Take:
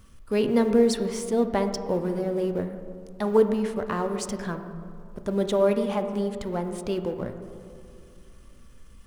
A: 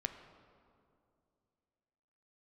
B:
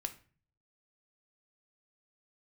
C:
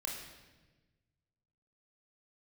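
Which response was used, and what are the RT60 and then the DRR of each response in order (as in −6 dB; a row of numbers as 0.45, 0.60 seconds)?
A; 2.5, 0.40, 1.2 seconds; 7.0, 6.5, −1.5 decibels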